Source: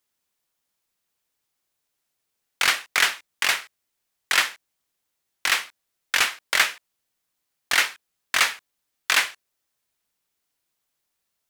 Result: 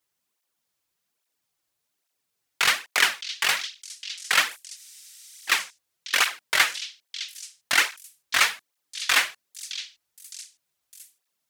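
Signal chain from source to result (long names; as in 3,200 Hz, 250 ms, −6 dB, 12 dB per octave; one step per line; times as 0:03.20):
echo through a band-pass that steps 612 ms, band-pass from 4,400 Hz, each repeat 0.7 octaves, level −7.5 dB
frozen spectrum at 0:04.79, 0.70 s
through-zero flanger with one copy inverted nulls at 1.2 Hz, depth 5.3 ms
level +2.5 dB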